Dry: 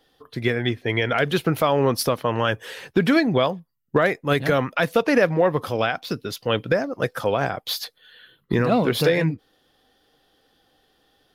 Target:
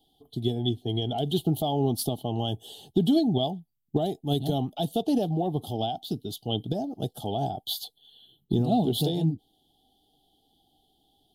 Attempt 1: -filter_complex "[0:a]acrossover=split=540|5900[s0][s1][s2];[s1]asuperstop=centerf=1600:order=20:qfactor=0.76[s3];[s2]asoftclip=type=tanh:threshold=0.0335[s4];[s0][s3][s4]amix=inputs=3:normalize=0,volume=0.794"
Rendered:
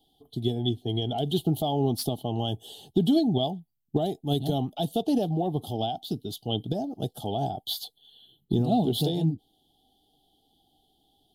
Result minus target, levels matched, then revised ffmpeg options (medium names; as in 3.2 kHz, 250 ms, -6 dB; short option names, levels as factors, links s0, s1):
saturation: distortion +12 dB
-filter_complex "[0:a]acrossover=split=540|5900[s0][s1][s2];[s1]asuperstop=centerf=1600:order=20:qfactor=0.76[s3];[s2]asoftclip=type=tanh:threshold=0.106[s4];[s0][s3][s4]amix=inputs=3:normalize=0,volume=0.794"